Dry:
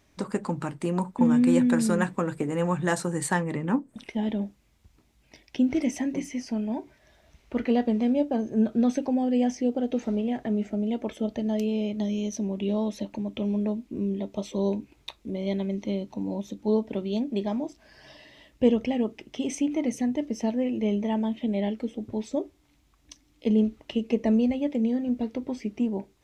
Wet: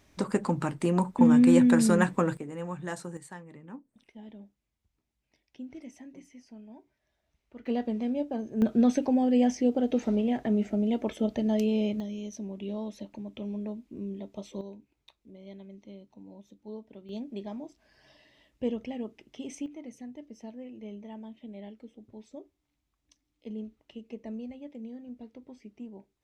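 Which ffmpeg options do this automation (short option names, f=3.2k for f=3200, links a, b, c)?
-af "asetnsamples=n=441:p=0,asendcmd='2.37 volume volume -10.5dB;3.17 volume volume -19dB;7.66 volume volume -6.5dB;8.62 volume volume 0.5dB;12 volume volume -8.5dB;14.61 volume volume -18dB;17.09 volume volume -10dB;19.66 volume volume -16.5dB',volume=1.5dB"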